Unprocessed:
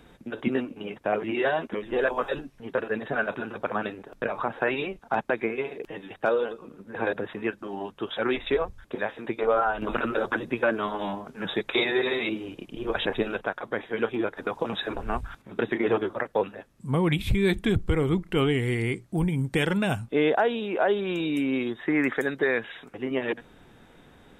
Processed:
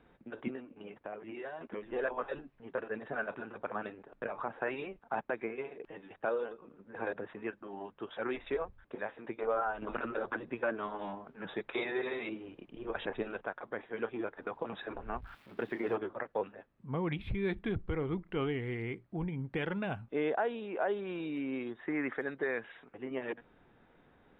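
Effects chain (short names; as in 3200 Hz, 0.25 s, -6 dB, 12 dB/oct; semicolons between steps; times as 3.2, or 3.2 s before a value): 15.22–15.96 switching spikes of -30 dBFS; low shelf 340 Hz -6.5 dB; 0.5–1.61 compressor 2.5:1, threshold -36 dBFS, peak gain reduction 9.5 dB; air absorption 450 m; gain -6 dB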